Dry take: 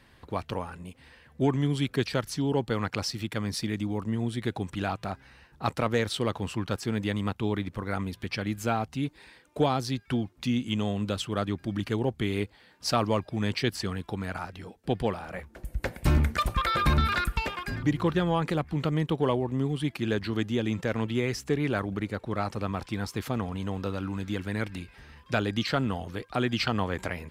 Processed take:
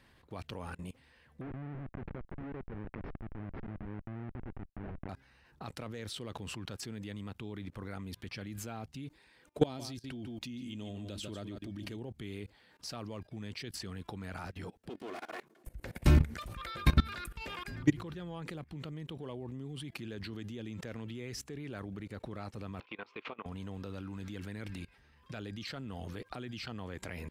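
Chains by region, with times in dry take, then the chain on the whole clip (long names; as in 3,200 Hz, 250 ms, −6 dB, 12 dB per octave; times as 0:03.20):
0:01.41–0:05.09: comparator with hysteresis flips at −28 dBFS + low-pass filter 2,000 Hz 24 dB per octave
0:09.64–0:11.97: parametric band 1,300 Hz −5.5 dB 1 octave + comb filter 3.2 ms, depth 31% + single-tap delay 146 ms −11 dB
0:14.89–0:15.67: lower of the sound and its delayed copy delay 2.8 ms + high-pass filter 180 Hz 24 dB per octave
0:22.80–0:23.46: downward compressor 16 to 1, threshold −32 dBFS + loudspeaker in its box 420–3,300 Hz, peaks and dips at 430 Hz +3 dB, 740 Hz −3 dB, 1,100 Hz +4 dB, 1,700 Hz −5 dB, 2,500 Hz +8 dB + double-tracking delay 18 ms −13.5 dB
whole clip: dynamic equaliser 1,000 Hz, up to −5 dB, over −41 dBFS, Q 0.87; output level in coarse steps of 22 dB; level +2 dB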